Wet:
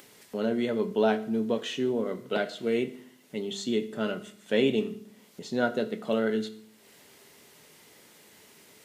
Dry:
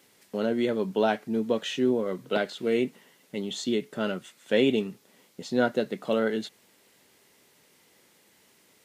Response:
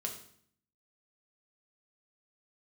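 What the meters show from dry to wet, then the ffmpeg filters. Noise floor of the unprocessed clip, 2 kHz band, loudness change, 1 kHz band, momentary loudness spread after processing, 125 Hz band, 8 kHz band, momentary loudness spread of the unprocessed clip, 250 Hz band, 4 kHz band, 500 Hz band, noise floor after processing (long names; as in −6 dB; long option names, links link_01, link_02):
−62 dBFS, −1.5 dB, −1.5 dB, −2.0 dB, 13 LU, −1.0 dB, −1.5 dB, 11 LU, −1.0 dB, −2.0 dB, −1.5 dB, −57 dBFS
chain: -filter_complex "[0:a]acompressor=mode=upward:threshold=-44dB:ratio=2.5,asplit=2[link_01][link_02];[1:a]atrim=start_sample=2205[link_03];[link_02][link_03]afir=irnorm=-1:irlink=0,volume=-3dB[link_04];[link_01][link_04]amix=inputs=2:normalize=0,volume=-6dB"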